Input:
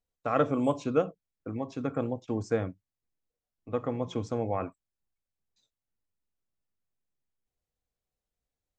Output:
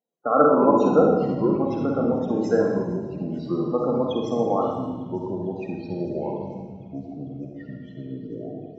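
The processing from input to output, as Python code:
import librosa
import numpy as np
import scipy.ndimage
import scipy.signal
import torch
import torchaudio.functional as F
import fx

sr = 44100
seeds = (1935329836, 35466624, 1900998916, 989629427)

p1 = fx.spec_topn(x, sr, count=32)
p2 = scipy.signal.sosfilt(scipy.signal.butter(4, 200.0, 'highpass', fs=sr, output='sos'), p1)
p3 = p2 + fx.echo_wet_highpass(p2, sr, ms=451, feedback_pct=83, hz=5000.0, wet_db=-20, dry=0)
p4 = fx.rev_schroeder(p3, sr, rt60_s=1.1, comb_ms=38, drr_db=-0.5)
p5 = fx.echo_pitch(p4, sr, ms=139, semitones=-5, count=3, db_per_echo=-6.0)
y = p5 * librosa.db_to_amplitude(6.5)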